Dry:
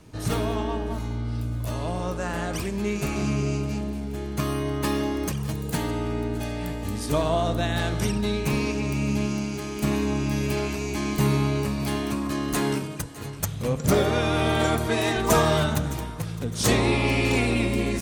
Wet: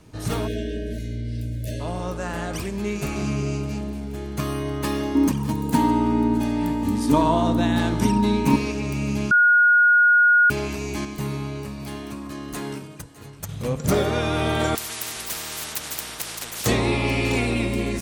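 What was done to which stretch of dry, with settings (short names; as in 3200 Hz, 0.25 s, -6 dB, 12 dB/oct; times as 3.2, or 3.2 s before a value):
0.47–1.8 spectral delete 650–1500 Hz
5.15–8.56 small resonant body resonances 260/930 Hz, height 18 dB, ringing for 70 ms
9.31–10.5 bleep 1440 Hz -12 dBFS
11.05–13.49 gain -6.5 dB
14.75–16.66 spectral compressor 10:1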